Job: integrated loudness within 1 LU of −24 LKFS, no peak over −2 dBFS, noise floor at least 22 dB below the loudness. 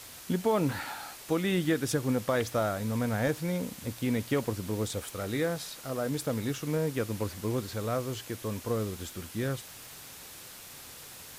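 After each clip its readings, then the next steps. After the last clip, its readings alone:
background noise floor −47 dBFS; target noise floor −54 dBFS; integrated loudness −31.5 LKFS; sample peak −15.5 dBFS; target loudness −24.0 LKFS
→ broadband denoise 7 dB, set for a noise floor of −47 dBFS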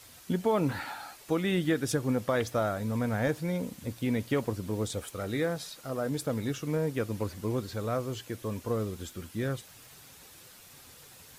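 background noise floor −53 dBFS; target noise floor −54 dBFS
→ broadband denoise 6 dB, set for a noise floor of −53 dBFS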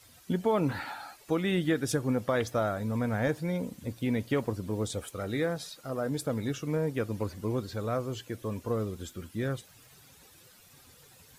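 background noise floor −57 dBFS; integrated loudness −32.0 LKFS; sample peak −16.0 dBFS; target loudness −24.0 LKFS
→ level +8 dB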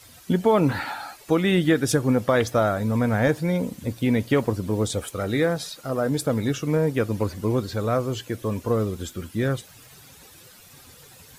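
integrated loudness −24.0 LKFS; sample peak −8.0 dBFS; background noise floor −49 dBFS

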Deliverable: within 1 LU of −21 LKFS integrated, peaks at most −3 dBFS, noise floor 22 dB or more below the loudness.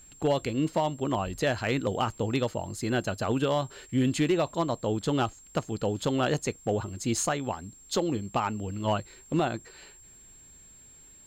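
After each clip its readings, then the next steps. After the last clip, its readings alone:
share of clipped samples 0.4%; peaks flattened at −18.0 dBFS; interfering tone 7,500 Hz; level of the tone −51 dBFS; integrated loudness −29.5 LKFS; sample peak −18.0 dBFS; target loudness −21.0 LKFS
→ clipped peaks rebuilt −18 dBFS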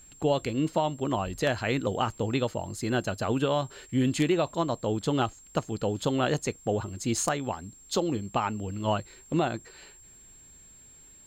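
share of clipped samples 0.0%; interfering tone 7,500 Hz; level of the tone −51 dBFS
→ notch filter 7,500 Hz, Q 30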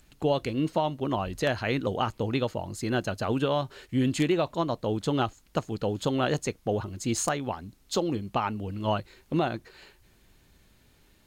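interfering tone none found; integrated loudness −29.0 LKFS; sample peak −9.0 dBFS; target loudness −21.0 LKFS
→ level +8 dB
brickwall limiter −3 dBFS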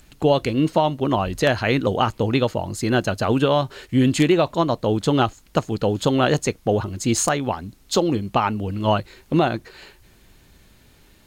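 integrated loudness −21.0 LKFS; sample peak −3.0 dBFS; background noise floor −53 dBFS

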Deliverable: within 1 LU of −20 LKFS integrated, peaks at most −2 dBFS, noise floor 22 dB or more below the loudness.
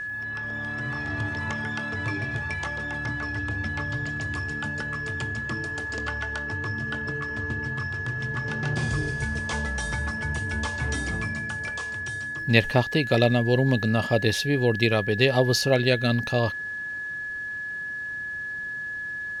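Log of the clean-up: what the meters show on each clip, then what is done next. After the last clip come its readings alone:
crackle rate 23 per second; interfering tone 1,700 Hz; level of the tone −30 dBFS; integrated loudness −26.5 LKFS; sample peak −5.0 dBFS; target loudness −20.0 LKFS
→ click removal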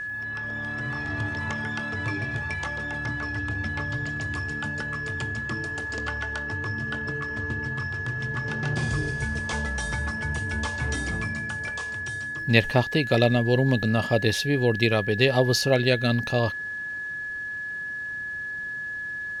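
crackle rate 0.10 per second; interfering tone 1,700 Hz; level of the tone −30 dBFS
→ notch filter 1,700 Hz, Q 30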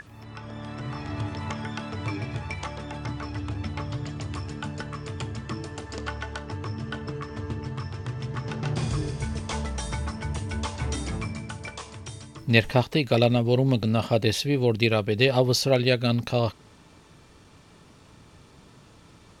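interfering tone none found; integrated loudness −27.5 LKFS; sample peak −5.0 dBFS; target loudness −20.0 LKFS
→ level +7.5 dB
brickwall limiter −2 dBFS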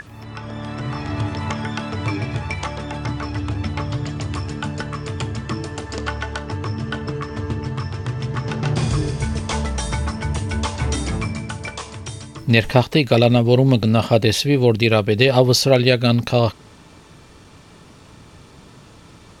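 integrated loudness −20.5 LKFS; sample peak −2.0 dBFS; background noise floor −46 dBFS

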